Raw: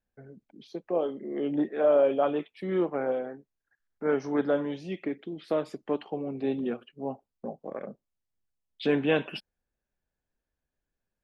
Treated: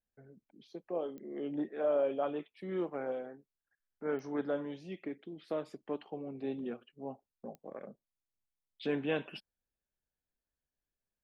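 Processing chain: 2.78–3.27 s: treble shelf 3.7 kHz +6 dB; clicks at 1.18/4.19/7.55 s, -28 dBFS; trim -8.5 dB

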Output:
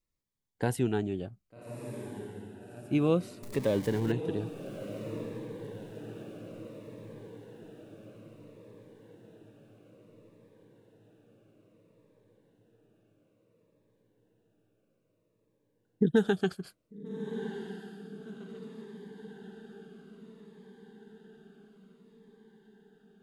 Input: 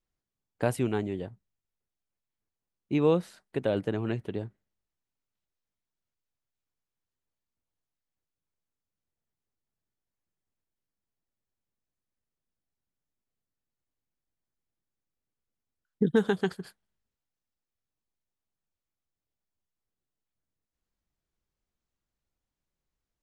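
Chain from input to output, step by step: 3.43–4.12 s: jump at every zero crossing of -36 dBFS; echo that smears into a reverb 1215 ms, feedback 59%, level -10 dB; Shepard-style phaser falling 0.59 Hz

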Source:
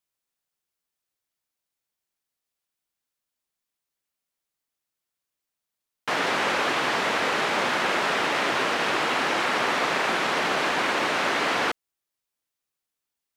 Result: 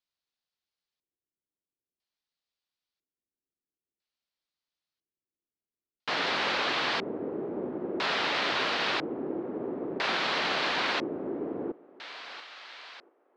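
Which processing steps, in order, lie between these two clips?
thinning echo 687 ms, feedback 71%, high-pass 550 Hz, level -16 dB; LFO low-pass square 0.5 Hz 360–4300 Hz; trim -6 dB

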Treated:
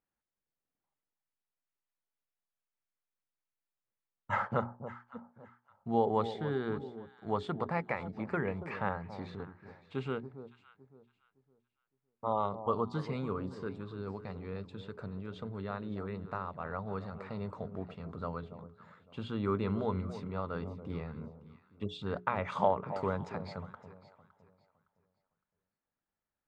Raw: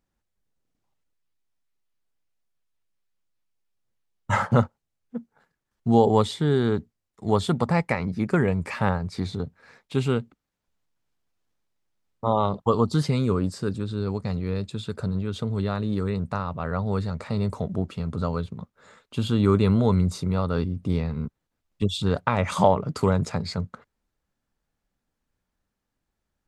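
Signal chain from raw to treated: low-pass 1.8 kHz 12 dB/octave; tilt EQ +2.5 dB/octave; hum notches 60/120/180/240/300/360/420 Hz; echo whose repeats swap between lows and highs 281 ms, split 940 Hz, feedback 50%, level -11 dB; trim -7.5 dB

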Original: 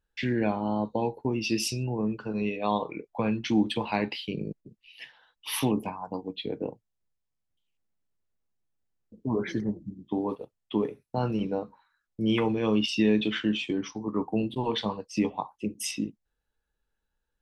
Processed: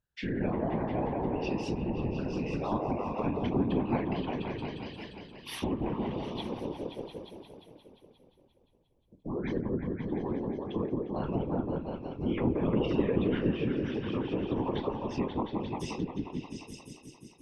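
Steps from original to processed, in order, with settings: delay with an opening low-pass 176 ms, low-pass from 750 Hz, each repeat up 1 oct, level 0 dB; whisper effect; low-pass that closes with the level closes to 2 kHz, closed at -20 dBFS; trim -6.5 dB

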